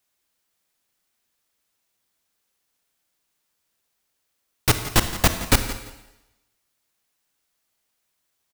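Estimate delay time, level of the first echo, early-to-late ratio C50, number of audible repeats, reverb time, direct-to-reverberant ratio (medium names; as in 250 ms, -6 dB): 171 ms, -15.5 dB, 9.0 dB, 2, 0.95 s, 8.0 dB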